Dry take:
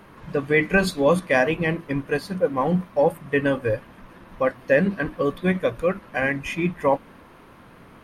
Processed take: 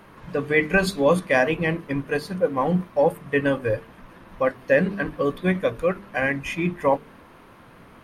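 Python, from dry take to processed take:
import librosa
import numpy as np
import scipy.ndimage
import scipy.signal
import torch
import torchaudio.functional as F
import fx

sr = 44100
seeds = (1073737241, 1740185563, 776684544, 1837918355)

y = fx.hum_notches(x, sr, base_hz=50, count=9)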